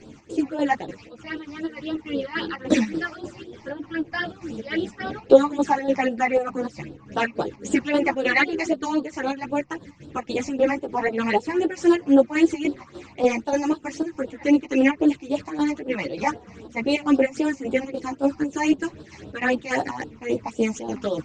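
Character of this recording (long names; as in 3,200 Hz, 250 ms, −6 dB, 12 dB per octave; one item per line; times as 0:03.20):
phaser sweep stages 8, 3.8 Hz, lowest notch 430–2,100 Hz
chopped level 3.4 Hz, depth 60%, duty 65%
a shimmering, thickened sound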